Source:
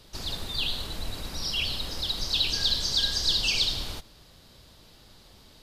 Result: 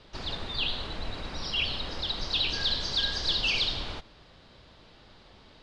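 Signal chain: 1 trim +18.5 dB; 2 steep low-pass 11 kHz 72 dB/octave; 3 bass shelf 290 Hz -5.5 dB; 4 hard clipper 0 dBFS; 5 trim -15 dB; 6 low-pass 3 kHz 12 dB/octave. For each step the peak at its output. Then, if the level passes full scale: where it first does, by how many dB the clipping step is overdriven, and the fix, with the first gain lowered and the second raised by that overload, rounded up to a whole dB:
+6.5 dBFS, +7.0 dBFS, +6.0 dBFS, 0.0 dBFS, -15.0 dBFS, -17.0 dBFS; step 1, 6.0 dB; step 1 +12.5 dB, step 5 -9 dB

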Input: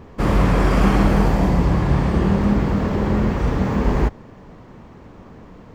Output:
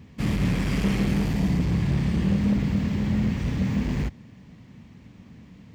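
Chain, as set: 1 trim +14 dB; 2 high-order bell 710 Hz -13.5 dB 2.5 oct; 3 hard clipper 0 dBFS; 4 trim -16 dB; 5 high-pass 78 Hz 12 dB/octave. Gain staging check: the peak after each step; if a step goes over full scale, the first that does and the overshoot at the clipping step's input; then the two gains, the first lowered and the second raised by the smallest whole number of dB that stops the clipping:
+10.0 dBFS, +8.5 dBFS, 0.0 dBFS, -16.0 dBFS, -11.5 dBFS; step 1, 8.5 dB; step 1 +5 dB, step 4 -7 dB

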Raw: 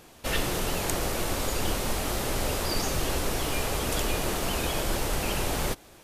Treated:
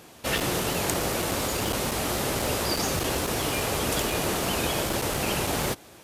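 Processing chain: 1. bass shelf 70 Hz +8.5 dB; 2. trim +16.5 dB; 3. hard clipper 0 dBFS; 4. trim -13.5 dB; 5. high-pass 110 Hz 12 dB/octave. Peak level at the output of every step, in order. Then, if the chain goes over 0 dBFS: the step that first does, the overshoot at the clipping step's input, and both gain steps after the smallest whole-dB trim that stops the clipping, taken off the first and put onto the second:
-11.0 dBFS, +5.5 dBFS, 0.0 dBFS, -13.5 dBFS, -11.0 dBFS; step 2, 5.5 dB; step 2 +10.5 dB, step 4 -7.5 dB

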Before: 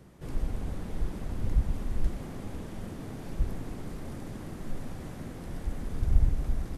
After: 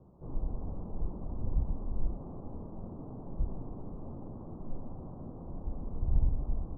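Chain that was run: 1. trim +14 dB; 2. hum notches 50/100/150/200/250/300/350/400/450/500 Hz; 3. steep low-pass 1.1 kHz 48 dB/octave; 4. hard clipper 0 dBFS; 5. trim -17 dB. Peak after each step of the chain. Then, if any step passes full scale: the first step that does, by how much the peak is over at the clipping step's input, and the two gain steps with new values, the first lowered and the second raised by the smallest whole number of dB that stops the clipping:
+5.0 dBFS, +4.0 dBFS, +4.0 dBFS, 0.0 dBFS, -17.0 dBFS; step 1, 4.0 dB; step 1 +10 dB, step 5 -13 dB

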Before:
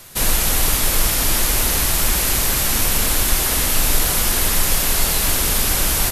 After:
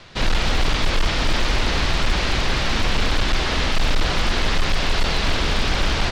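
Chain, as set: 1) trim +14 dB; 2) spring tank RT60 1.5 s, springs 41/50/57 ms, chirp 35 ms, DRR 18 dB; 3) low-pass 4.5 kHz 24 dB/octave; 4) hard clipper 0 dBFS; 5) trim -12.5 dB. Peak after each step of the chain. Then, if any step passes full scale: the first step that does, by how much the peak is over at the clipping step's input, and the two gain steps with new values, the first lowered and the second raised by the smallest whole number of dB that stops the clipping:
+10.5 dBFS, +10.5 dBFS, +9.5 dBFS, 0.0 dBFS, -12.5 dBFS; step 1, 9.5 dB; step 1 +4 dB, step 5 -2.5 dB

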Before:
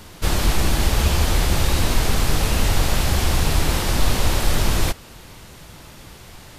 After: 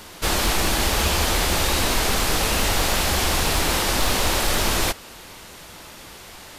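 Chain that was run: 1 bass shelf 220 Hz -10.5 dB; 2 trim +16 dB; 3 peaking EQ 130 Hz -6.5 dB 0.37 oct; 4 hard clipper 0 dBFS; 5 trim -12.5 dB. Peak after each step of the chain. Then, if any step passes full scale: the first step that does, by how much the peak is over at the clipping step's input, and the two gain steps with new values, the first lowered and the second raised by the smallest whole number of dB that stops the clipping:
-11.0 dBFS, +5.0 dBFS, +5.0 dBFS, 0.0 dBFS, -12.5 dBFS; step 2, 5.0 dB; step 2 +11 dB, step 5 -7.5 dB

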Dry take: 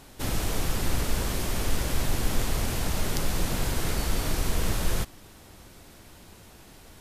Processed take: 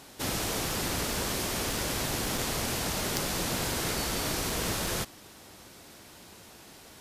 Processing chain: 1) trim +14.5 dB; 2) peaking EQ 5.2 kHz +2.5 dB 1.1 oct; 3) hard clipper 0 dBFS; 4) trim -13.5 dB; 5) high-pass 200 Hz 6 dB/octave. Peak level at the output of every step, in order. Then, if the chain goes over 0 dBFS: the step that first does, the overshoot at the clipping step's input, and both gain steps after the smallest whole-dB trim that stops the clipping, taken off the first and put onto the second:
+5.0 dBFS, +6.5 dBFS, 0.0 dBFS, -13.5 dBFS, -10.5 dBFS; step 1, 6.5 dB; step 1 +7.5 dB, step 4 -6.5 dB

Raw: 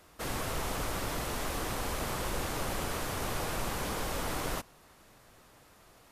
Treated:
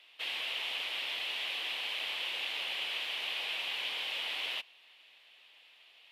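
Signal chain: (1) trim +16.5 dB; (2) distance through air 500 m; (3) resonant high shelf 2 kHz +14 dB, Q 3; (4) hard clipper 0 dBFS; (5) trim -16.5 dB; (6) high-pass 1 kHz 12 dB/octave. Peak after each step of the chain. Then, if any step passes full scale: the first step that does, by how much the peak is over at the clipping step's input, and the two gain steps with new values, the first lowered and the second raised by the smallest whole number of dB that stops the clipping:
-4.5 dBFS, -6.0 dBFS, -5.0 dBFS, -5.0 dBFS, -21.5 dBFS, -24.5 dBFS; nothing clips

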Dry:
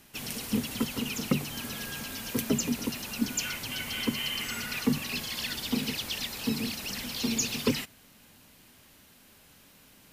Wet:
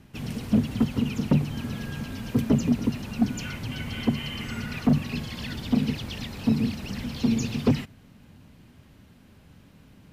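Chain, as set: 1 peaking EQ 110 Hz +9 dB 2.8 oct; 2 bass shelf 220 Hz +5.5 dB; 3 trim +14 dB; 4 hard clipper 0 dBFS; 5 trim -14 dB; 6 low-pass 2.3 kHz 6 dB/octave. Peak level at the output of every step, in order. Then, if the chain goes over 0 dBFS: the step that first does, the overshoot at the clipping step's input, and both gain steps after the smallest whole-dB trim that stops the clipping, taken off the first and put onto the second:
-6.0 dBFS, -4.5 dBFS, +9.5 dBFS, 0.0 dBFS, -14.0 dBFS, -14.0 dBFS; step 3, 9.5 dB; step 3 +4 dB, step 5 -4 dB

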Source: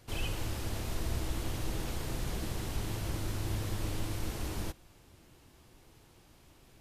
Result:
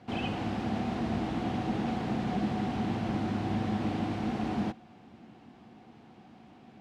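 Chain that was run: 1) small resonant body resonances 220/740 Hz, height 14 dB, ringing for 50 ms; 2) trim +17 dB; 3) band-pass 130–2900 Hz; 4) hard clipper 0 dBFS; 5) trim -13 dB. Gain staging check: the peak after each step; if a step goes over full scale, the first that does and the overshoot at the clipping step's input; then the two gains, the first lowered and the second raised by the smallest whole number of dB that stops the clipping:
-18.5 dBFS, -1.5 dBFS, -6.0 dBFS, -6.0 dBFS, -19.0 dBFS; nothing clips

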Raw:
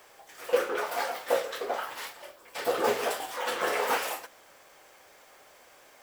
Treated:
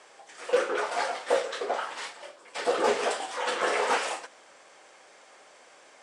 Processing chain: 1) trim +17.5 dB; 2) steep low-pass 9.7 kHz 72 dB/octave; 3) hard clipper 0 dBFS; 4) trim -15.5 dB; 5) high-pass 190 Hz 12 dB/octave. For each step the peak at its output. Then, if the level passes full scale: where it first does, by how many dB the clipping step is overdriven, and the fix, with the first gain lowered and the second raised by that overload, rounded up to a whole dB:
+6.0 dBFS, +6.0 dBFS, 0.0 dBFS, -15.5 dBFS, -12.5 dBFS; step 1, 6.0 dB; step 1 +11.5 dB, step 4 -9.5 dB

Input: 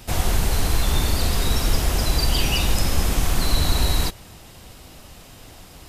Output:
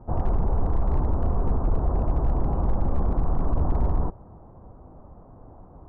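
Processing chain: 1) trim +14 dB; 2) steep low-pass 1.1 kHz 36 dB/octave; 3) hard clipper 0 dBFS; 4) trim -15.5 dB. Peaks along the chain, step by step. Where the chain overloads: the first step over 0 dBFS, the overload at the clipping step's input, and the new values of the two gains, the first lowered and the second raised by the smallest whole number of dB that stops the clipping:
+8.0 dBFS, +7.0 dBFS, 0.0 dBFS, -15.5 dBFS; step 1, 7.0 dB; step 1 +7 dB, step 4 -8.5 dB

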